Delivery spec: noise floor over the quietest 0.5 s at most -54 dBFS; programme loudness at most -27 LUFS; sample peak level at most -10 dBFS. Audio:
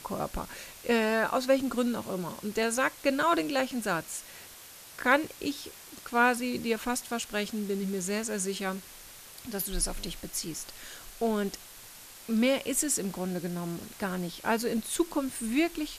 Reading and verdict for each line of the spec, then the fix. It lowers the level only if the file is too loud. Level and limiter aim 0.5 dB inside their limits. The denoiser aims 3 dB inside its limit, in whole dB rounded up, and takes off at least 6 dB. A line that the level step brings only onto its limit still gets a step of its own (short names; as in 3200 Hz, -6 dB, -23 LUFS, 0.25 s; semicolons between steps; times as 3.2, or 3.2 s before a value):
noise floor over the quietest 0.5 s -49 dBFS: fail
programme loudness -30.0 LUFS: OK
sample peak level -9.5 dBFS: fail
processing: denoiser 8 dB, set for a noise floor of -49 dBFS; limiter -10.5 dBFS